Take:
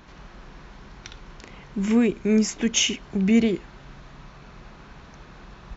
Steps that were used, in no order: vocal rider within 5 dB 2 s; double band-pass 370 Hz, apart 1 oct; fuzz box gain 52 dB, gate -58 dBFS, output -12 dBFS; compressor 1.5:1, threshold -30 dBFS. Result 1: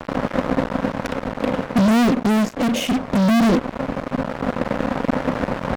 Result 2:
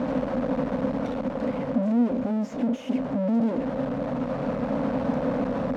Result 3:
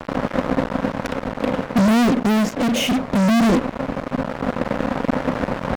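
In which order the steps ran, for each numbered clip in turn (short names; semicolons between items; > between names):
compressor > double band-pass > fuzz box > vocal rider; compressor > fuzz box > double band-pass > vocal rider; double band-pass > compressor > fuzz box > vocal rider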